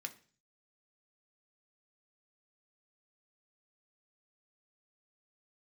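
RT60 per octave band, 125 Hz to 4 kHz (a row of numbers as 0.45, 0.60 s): 0.75, 0.55, 0.45, 0.40, 0.45, 0.50 s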